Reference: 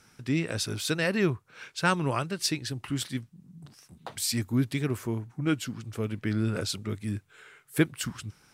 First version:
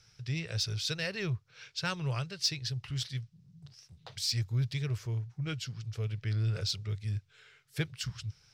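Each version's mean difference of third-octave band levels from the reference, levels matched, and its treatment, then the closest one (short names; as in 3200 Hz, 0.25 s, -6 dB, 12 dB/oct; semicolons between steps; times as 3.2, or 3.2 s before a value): 5.5 dB: EQ curve 130 Hz 0 dB, 260 Hz -25 dB, 440 Hz -10 dB, 1000 Hz -14 dB, 5300 Hz +1 dB, 8900 Hz -16 dB; in parallel at -8 dB: overloaded stage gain 30 dB; on the sum: gain -1.5 dB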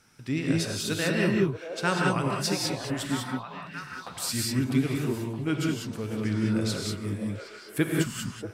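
9.0 dB: delay with a stepping band-pass 0.635 s, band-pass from 580 Hz, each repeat 0.7 oct, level -4.5 dB; non-linear reverb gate 0.22 s rising, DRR -1 dB; gain -2.5 dB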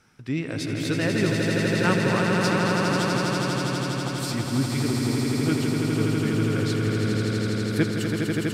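13.5 dB: high shelf 4800 Hz -8.5 dB; on a send: swelling echo 82 ms, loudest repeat 8, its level -5 dB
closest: first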